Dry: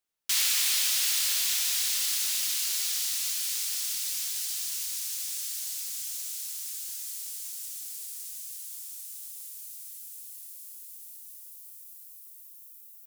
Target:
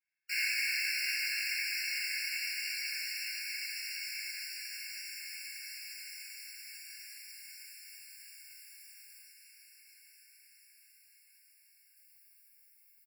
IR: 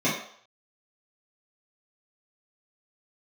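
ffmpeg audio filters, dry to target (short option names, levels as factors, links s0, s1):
-filter_complex "[0:a]asettb=1/sr,asplit=3[s0][s1][s2];[s0]atrim=end=9.224[s3];[s1]atrim=start=9.22:end=11.96,asetpts=PTS-STARTPTS,afade=t=in:d=0.004:c=qsin,afade=t=out:st=2.736:d=0.004:c=qsin,highshelf=f=12000:g=-7[s4];[s2]atrim=start=11.956[s5];[s3][s4]acrossfade=d=0.004:c1=hsin:c2=qsin[s6];[s6][s5]acrossfade=d=0.004:c1=qsin:c2=hsin,aecho=1:1:109|218|327|436:0.282|0.107|0.0407|0.0155,acrusher=bits=8:mode=log:mix=0:aa=0.000001,highshelf=f=2100:g=-11.5[s7];[1:a]atrim=start_sample=2205,atrim=end_sample=3528[s8];[s7][s8]afir=irnorm=-1:irlink=0,asoftclip=type=tanh:threshold=0.0841,afftfilt=real='re*eq(mod(floor(b*sr/1024/1400),2),1)':imag='im*eq(mod(floor(b*sr/1024/1400),2),1)':win_size=1024:overlap=0.75,volume=0.841"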